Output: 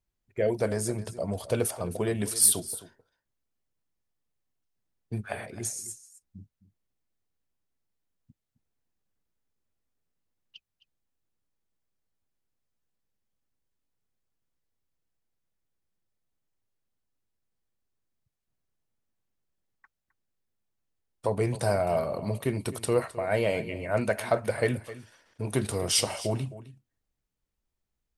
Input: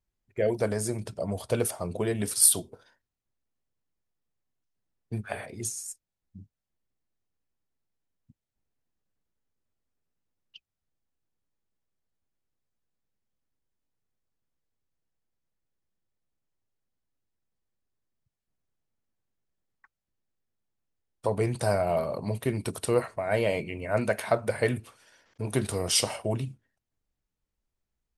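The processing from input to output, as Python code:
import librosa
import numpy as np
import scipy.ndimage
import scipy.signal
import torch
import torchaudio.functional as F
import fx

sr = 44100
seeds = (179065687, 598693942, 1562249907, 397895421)

y = 10.0 ** (-8.5 / 20.0) * np.tanh(x / 10.0 ** (-8.5 / 20.0))
y = y + 10.0 ** (-16.0 / 20.0) * np.pad(y, (int(262 * sr / 1000.0), 0))[:len(y)]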